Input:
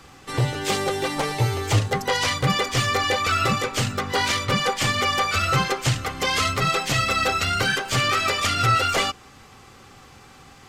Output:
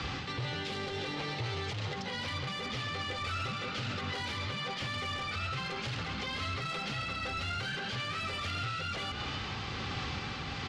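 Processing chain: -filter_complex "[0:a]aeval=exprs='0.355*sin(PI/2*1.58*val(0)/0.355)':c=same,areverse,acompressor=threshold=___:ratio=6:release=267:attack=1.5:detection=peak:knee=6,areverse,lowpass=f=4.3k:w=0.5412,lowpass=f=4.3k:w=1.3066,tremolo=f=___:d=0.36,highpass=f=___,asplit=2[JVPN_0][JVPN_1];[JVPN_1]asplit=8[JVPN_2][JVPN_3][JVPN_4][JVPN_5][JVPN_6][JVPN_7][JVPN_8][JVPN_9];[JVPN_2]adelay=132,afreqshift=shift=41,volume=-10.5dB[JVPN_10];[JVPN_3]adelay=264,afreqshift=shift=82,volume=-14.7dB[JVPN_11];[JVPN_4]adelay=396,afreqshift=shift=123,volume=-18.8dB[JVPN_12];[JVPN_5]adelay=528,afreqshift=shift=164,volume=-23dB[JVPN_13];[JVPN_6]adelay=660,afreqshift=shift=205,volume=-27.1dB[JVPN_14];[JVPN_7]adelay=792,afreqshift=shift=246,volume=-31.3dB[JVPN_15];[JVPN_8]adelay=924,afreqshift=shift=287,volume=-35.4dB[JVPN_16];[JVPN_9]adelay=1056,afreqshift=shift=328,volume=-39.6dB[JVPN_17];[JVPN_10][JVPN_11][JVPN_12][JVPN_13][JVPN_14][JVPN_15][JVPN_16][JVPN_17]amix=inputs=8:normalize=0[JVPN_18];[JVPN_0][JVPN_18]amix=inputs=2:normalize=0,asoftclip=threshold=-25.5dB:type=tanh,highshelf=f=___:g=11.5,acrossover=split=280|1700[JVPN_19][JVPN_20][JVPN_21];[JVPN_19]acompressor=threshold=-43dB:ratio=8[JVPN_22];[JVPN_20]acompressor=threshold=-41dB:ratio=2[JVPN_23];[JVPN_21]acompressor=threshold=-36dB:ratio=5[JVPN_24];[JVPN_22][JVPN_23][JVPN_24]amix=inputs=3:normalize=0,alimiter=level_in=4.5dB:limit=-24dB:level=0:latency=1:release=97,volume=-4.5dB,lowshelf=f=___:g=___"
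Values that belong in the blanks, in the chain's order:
-28dB, 1.2, 61, 2.2k, 170, 11.5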